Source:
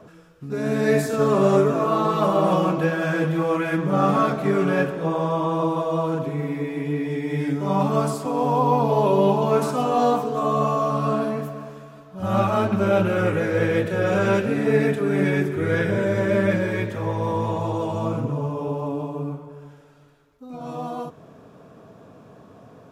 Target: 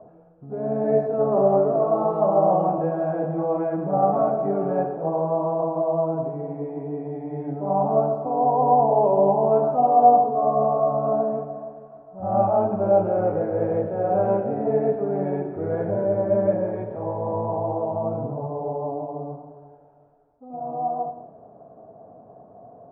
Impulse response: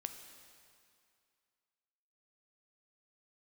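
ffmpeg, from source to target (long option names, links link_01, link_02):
-filter_complex "[0:a]lowpass=frequency=720:width_type=q:width=5.8[link_01];[1:a]atrim=start_sample=2205,afade=type=out:start_time=0.31:duration=0.01,atrim=end_sample=14112,asetrate=48510,aresample=44100[link_02];[link_01][link_02]afir=irnorm=-1:irlink=0,volume=-3dB"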